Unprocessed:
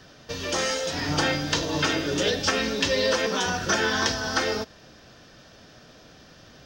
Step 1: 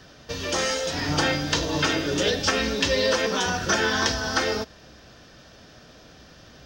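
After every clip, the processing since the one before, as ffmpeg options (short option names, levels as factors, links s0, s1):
-af "equalizer=f=62:t=o:w=0.38:g=8,volume=1.12"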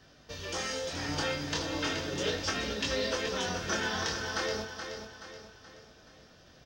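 -af "flanger=delay=19.5:depth=5.6:speed=0.35,aecho=1:1:426|852|1278|1704|2130:0.398|0.179|0.0806|0.0363|0.0163,volume=0.473"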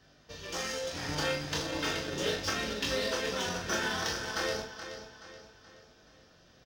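-filter_complex "[0:a]asplit=2[s0][s1];[s1]acrusher=bits=4:mix=0:aa=0.5,volume=0.447[s2];[s0][s2]amix=inputs=2:normalize=0,asplit=2[s3][s4];[s4]adelay=40,volume=0.473[s5];[s3][s5]amix=inputs=2:normalize=0,volume=0.631"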